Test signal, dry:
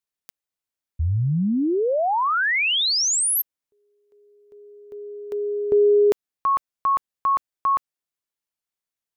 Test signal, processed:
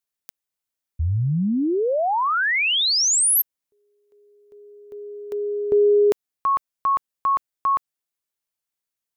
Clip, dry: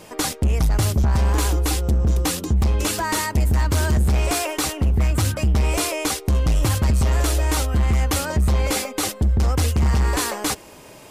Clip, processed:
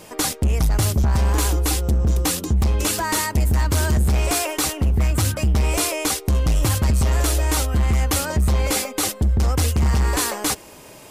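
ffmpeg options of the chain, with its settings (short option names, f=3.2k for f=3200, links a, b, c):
-af "highshelf=f=6.7k:g=4.5"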